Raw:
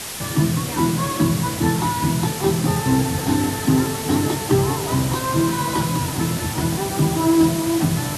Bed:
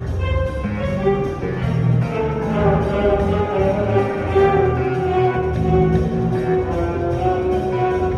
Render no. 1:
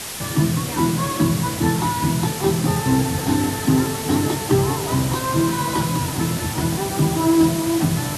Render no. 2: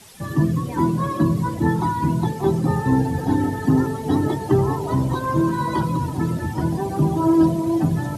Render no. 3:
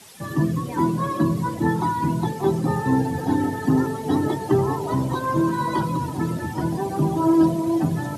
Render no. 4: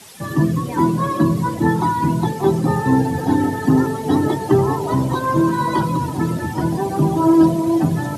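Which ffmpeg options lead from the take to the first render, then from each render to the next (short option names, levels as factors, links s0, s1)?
-af anull
-af "afftdn=nr=17:nf=-27"
-af "highpass=71,lowshelf=f=130:g=-7"
-af "volume=1.68"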